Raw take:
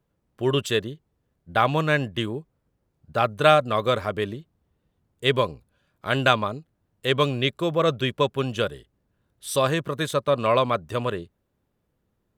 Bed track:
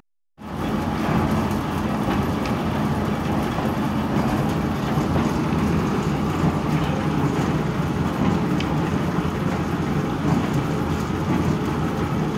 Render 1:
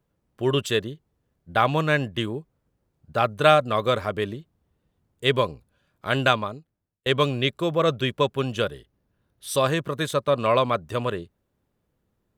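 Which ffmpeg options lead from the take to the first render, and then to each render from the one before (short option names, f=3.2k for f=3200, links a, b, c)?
-filter_complex "[0:a]asettb=1/sr,asplit=3[a][b][c];[a]atrim=end=8.644[d];[b]atrim=start=8.64:end=9.5,asetpts=PTS-STARTPTS,afade=t=in:d=0.004:c=qsin,afade=t=out:st=0.856:d=0.004:c=qsin,equalizer=f=7.7k:w=7.3:g=-10[e];[c]atrim=start=9.496[f];[d][e]acrossfade=d=0.004:c1=hsin:c2=qsin[g];[g][f]acrossfade=d=0.004:c1=qsin:c2=hsin,asplit=2[h][i];[h]atrim=end=7.06,asetpts=PTS-STARTPTS,afade=t=out:st=6.21:d=0.85[j];[i]atrim=start=7.06,asetpts=PTS-STARTPTS,afade=t=in:d=0.004:c=hsin[k];[j][k]concat=n=2:v=0:a=1"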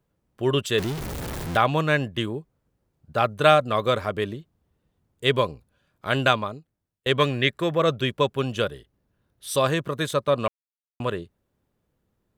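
-filter_complex "[0:a]asettb=1/sr,asplit=3[a][b][c];[a]atrim=end=0.784[d];[b]atrim=start=0.78:end=1.57,asetpts=PTS-STARTPTS,afade=t=in:d=0.004:c=qsin,afade=t=out:st=0.786:d=0.004:c=qsin,aeval=exprs='val(0)+0.5*0.0531*sgn(val(0))':c=same[e];[c]atrim=start=1.566[f];[d][e]acrossfade=d=0.004:c1=hsin:c2=qsin[g];[g][f]acrossfade=d=0.004:c1=qsin:c2=hsin,asettb=1/sr,asplit=3[h][i][j];[h]atrim=end=7.194[k];[i]atrim=start=7.19:end=7.78,asetpts=PTS-STARTPTS,afade=t=in:d=0.004:c=qsin,afade=t=out:st=0.586:d=0.004:c=qsin,equalizer=f=1.8k:t=o:w=0.42:g=12[l];[j]atrim=start=7.776[m];[k][l]acrossfade=d=0.004:c1=hsin:c2=qsin[n];[n][m]acrossfade=d=0.004:c1=qsin:c2=hsin,asplit=3[o][p][q];[o]atrim=end=10.48,asetpts=PTS-STARTPTS,afade=t=out:st=10.476:d=0.004:c=hsin[r];[p]atrim=start=10.48:end=11,asetpts=PTS-STARTPTS,volume=0[s];[q]atrim=start=11,asetpts=PTS-STARTPTS,afade=t=in:d=0.004:c=hsin[t];[r][s][t]concat=n=3:v=0:a=1"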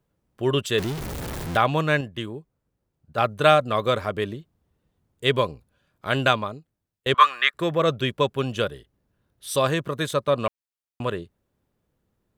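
-filter_complex "[0:a]asettb=1/sr,asplit=3[a][b][c];[a]atrim=end=7.144[d];[b]atrim=start=7.14:end=7.54,asetpts=PTS-STARTPTS,afade=t=in:d=0.004:c=qsin,afade=t=out:st=0.396:d=0.004:c=qsin,highpass=f=1.2k:t=q:w=7.5[e];[c]atrim=start=7.536[f];[d][e]acrossfade=d=0.004:c1=hsin:c2=qsin[g];[g][f]acrossfade=d=0.004:c1=qsin:c2=hsin,asplit=3[h][i][j];[h]atrim=end=2.012[k];[i]atrim=start=2.008:end=3.182,asetpts=PTS-STARTPTS,volume=-4.5dB[l];[j]atrim=start=3.178[m];[k][l]acrossfade=d=0.004:c1=hsin:c2=hsin[n];[n][m]acrossfade=d=0.004:c1=hsin:c2=hsin"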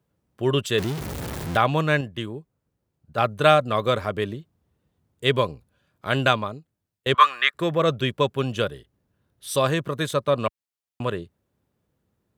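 -af "highpass=76,lowshelf=f=100:g=5.5"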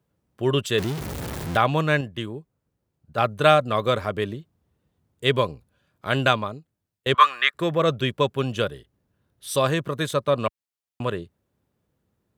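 -af anull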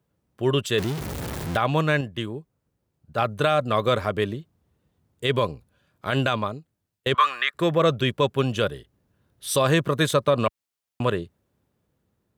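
-af "dynaudnorm=f=490:g=9:m=11.5dB,alimiter=limit=-10dB:level=0:latency=1:release=46"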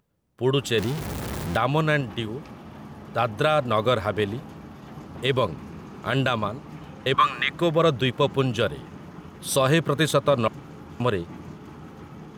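-filter_complex "[1:a]volume=-19dB[a];[0:a][a]amix=inputs=2:normalize=0"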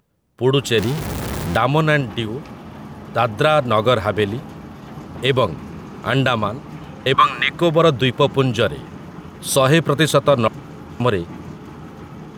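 -af "volume=6dB"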